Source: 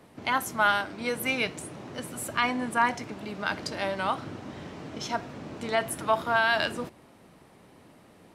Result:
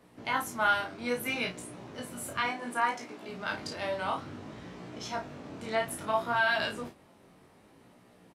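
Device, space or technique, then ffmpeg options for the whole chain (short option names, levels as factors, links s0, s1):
double-tracked vocal: -filter_complex "[0:a]asettb=1/sr,asplit=3[s0][s1][s2];[s0]atrim=end=2.464[s3];[s1]atrim=start=2.46:end=3.29,asetpts=PTS-STARTPTS,afade=t=in:d=0.004:c=qsin,afade=t=out:st=0.826:d=0.004:c=qsin,highpass=240[s4];[s2]atrim=start=3.286[s5];[s3][s4]acrossfade=d=0.004:c1=hsin:c2=qsin[s6];[s6][s5]acrossfade=d=0.004:c1=qsin:c2=hsin,asplit=2[s7][s8];[s8]adelay=33,volume=0.501[s9];[s7][s9]amix=inputs=2:normalize=0,flanger=delay=16.5:depth=6.2:speed=0.62,volume=0.794"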